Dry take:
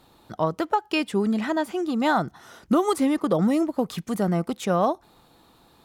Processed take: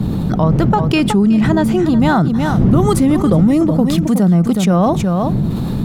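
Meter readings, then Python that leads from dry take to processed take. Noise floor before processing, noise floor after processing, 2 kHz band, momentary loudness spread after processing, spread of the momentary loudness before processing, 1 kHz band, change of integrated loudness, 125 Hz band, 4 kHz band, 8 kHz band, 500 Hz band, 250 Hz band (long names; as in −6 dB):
−58 dBFS, −19 dBFS, +6.5 dB, 4 LU, 6 LU, +6.5 dB, +10.5 dB, +19.0 dB, +8.0 dB, +10.0 dB, +7.5 dB, +12.5 dB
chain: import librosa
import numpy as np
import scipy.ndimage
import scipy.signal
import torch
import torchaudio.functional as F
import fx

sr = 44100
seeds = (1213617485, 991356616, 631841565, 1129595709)

p1 = fx.dmg_wind(x, sr, seeds[0], corner_hz=190.0, level_db=-31.0)
p2 = fx.peak_eq(p1, sr, hz=170.0, db=12.5, octaves=1.3)
p3 = p2 + fx.echo_single(p2, sr, ms=369, db=-12.5, dry=0)
p4 = fx.env_flatten(p3, sr, amount_pct=70)
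y = p4 * librosa.db_to_amplitude(-2.0)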